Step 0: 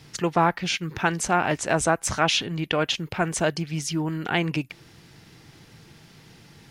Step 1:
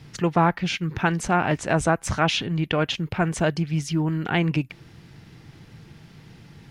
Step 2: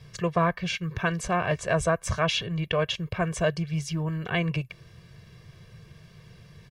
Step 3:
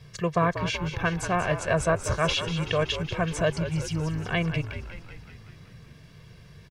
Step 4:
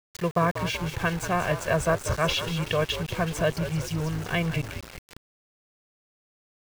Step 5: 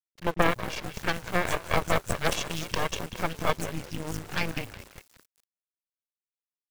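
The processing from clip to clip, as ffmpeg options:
-af "bass=f=250:g=6,treble=f=4000:g=-6"
-af "aecho=1:1:1.8:0.92,volume=0.531"
-filter_complex "[0:a]asplit=9[s0][s1][s2][s3][s4][s5][s6][s7][s8];[s1]adelay=189,afreqshift=-54,volume=0.316[s9];[s2]adelay=378,afreqshift=-108,volume=0.195[s10];[s3]adelay=567,afreqshift=-162,volume=0.122[s11];[s4]adelay=756,afreqshift=-216,volume=0.075[s12];[s5]adelay=945,afreqshift=-270,volume=0.0468[s13];[s6]adelay=1134,afreqshift=-324,volume=0.0288[s14];[s7]adelay=1323,afreqshift=-378,volume=0.018[s15];[s8]adelay=1512,afreqshift=-432,volume=0.0111[s16];[s0][s9][s10][s11][s12][s13][s14][s15][s16]amix=inputs=9:normalize=0"
-af "aeval=exprs='val(0)*gte(abs(val(0)),0.0188)':c=same"
-filter_complex "[0:a]acrossover=split=200|5200[s0][s1][s2];[s1]adelay=30[s3];[s2]adelay=270[s4];[s0][s3][s4]amix=inputs=3:normalize=0,acrusher=bits=6:mix=0:aa=0.5,aeval=exprs='0.376*(cos(1*acos(clip(val(0)/0.376,-1,1)))-cos(1*PI/2))+0.0531*(cos(3*acos(clip(val(0)/0.376,-1,1)))-cos(3*PI/2))+0.168*(cos(4*acos(clip(val(0)/0.376,-1,1)))-cos(4*PI/2))+0.0106*(cos(7*acos(clip(val(0)/0.376,-1,1)))-cos(7*PI/2))':c=same"

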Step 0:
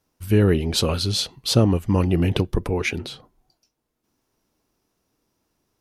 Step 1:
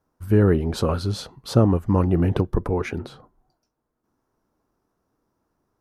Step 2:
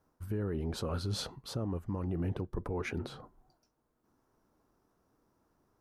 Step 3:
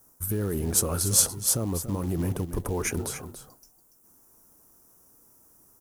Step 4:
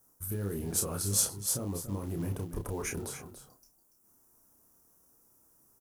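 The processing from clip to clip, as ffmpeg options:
-af "highshelf=f=1900:t=q:w=1.5:g=-10"
-af "areverse,acompressor=threshold=0.0562:ratio=6,areverse,alimiter=level_in=1.26:limit=0.0631:level=0:latency=1:release=191,volume=0.794"
-af "aexciter=amount=12.2:drive=5.7:freq=6000,acrusher=bits=6:mode=log:mix=0:aa=0.000001,aecho=1:1:286:0.282,volume=2"
-filter_complex "[0:a]asplit=2[s0][s1];[s1]adelay=30,volume=0.562[s2];[s0][s2]amix=inputs=2:normalize=0,volume=0.398"

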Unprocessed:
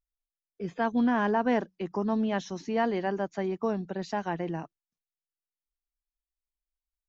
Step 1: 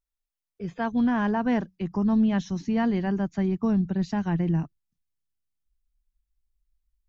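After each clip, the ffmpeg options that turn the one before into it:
-af "asubboost=boost=11:cutoff=170"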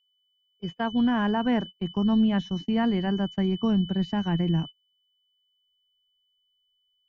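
-filter_complex "[0:a]acrossover=split=3300[s0][s1];[s1]acompressor=threshold=0.00158:ratio=4:attack=1:release=60[s2];[s0][s2]amix=inputs=2:normalize=0,aeval=exprs='val(0)+0.00891*sin(2*PI*3000*n/s)':c=same,agate=range=0.0355:threshold=0.0224:ratio=16:detection=peak"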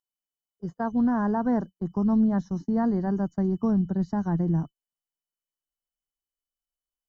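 -af "asuperstop=centerf=2700:order=4:qfactor=0.73"

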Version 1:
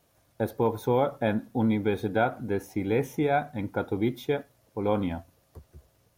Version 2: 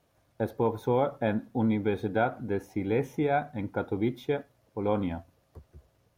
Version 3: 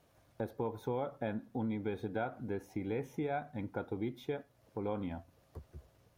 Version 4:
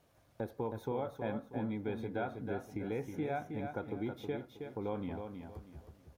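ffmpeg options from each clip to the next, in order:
-af "highshelf=f=5300:g=-9,volume=0.841"
-af "acompressor=threshold=0.00708:ratio=2,volume=1.12"
-af "aecho=1:1:319|638|957|1276:0.473|0.147|0.0455|0.0141,volume=0.891"

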